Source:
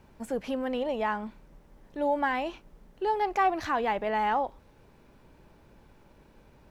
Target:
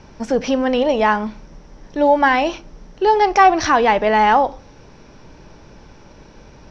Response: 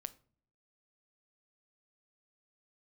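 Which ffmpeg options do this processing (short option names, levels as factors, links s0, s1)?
-filter_complex "[0:a]lowpass=f=5700:t=q:w=9.9,asplit=2[s0][s1];[1:a]atrim=start_sample=2205,lowpass=4700[s2];[s1][s2]afir=irnorm=-1:irlink=0,volume=2.24[s3];[s0][s3]amix=inputs=2:normalize=0,volume=1.88"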